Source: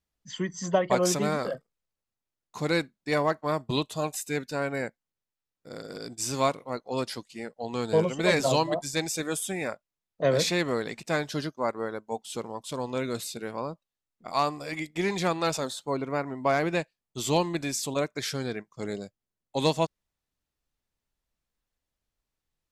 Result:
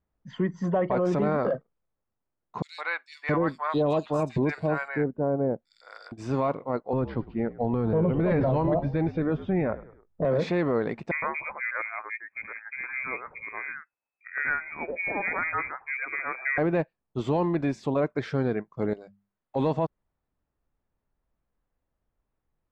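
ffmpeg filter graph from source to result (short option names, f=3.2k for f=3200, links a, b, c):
-filter_complex "[0:a]asettb=1/sr,asplit=3[a][b][c];[a]atrim=end=2.624[d];[b]atrim=start=2.62:end=6.12,asetpts=PTS-STARTPTS,afade=t=in:d=0.004:c=qsin,afade=t=out:st=3.496:d=0.004:c=qsin,highshelf=f=2.8k:g=10.5,acrossover=split=890|3500[e][f][g];[f]adelay=160[h];[e]adelay=670[i];[i][h][g]amix=inputs=3:normalize=0,atrim=end_sample=154350[j];[c]atrim=start=6.116[k];[d][j]acrossfade=d=0.004:c1=hsin:c2=qsin[l];[l][k]acrossfade=d=0.004:c1=qsin:c2=hsin,asettb=1/sr,asplit=3[m][n][o];[m]atrim=end=6.934[p];[n]atrim=start=6.93:end=10.25,asetpts=PTS-STARTPTS,afade=t=in:d=0.004:c=qsin,afade=t=out:st=3.316:d=0.004:c=qsin,lowpass=f=4.4k:w=0.5412,lowpass=f=4.4k:w=1.3066,aemphasis=mode=reproduction:type=bsi,asplit=4[q][r][s][t];[r]adelay=102,afreqshift=-57,volume=-20dB[u];[s]adelay=204,afreqshift=-114,volume=-26.9dB[v];[t]adelay=306,afreqshift=-171,volume=-33.9dB[w];[q][u][v][w]amix=inputs=4:normalize=0,atrim=end_sample=146412[x];[o]atrim=start=10.246[y];[p][x]acrossfade=d=0.004:c1=hsin:c2=qsin[z];[z][y]acrossfade=d=0.004:c1=qsin:c2=hsin,asettb=1/sr,asplit=3[aa][ab][ac];[aa]atrim=end=11.114[ad];[ab]atrim=start=11.11:end=16.58,asetpts=PTS-STARTPTS,afade=t=in:d=0.004:c=qsin,afade=t=out:st=5.466:d=0.004:c=qsin,acrossover=split=860[ae][af];[af]adelay=110[ag];[ae][ag]amix=inputs=2:normalize=0,atrim=end_sample=241227,lowpass=f=2.2k:t=q:w=0.5098,lowpass=f=2.2k:t=q:w=0.6013,lowpass=f=2.2k:t=q:w=0.9,lowpass=f=2.2k:t=q:w=2.563,afreqshift=-2600[ah];[ac]atrim=start=16.576[ai];[ad][ah]acrossfade=d=0.004:c1=hsin:c2=qsin[aj];[aj][ai]acrossfade=d=0.004:c1=qsin:c2=hsin,asettb=1/sr,asplit=3[ak][al][am];[ak]atrim=end=18.934[an];[al]atrim=start=18.93:end=19.56,asetpts=PTS-STARTPTS,afade=t=in:d=0.004:c=qsin,afade=t=out:st=0.626:d=0.004:c=qsin,acompressor=threshold=-42dB:ratio=10:attack=3.2:release=140:knee=1:detection=peak,tiltshelf=f=690:g=-6.5,bandreject=f=50:t=h:w=6,bandreject=f=100:t=h:w=6,bandreject=f=150:t=h:w=6,bandreject=f=200:t=h:w=6[ao];[am]atrim=start=19.556[ap];[an][ao]acrossfade=d=0.004:c1=hsin:c2=qsin[aq];[aq][ap]acrossfade=d=0.004:c1=qsin:c2=hsin,lowpass=1.3k,acontrast=75,alimiter=limit=-17dB:level=0:latency=1:release=15"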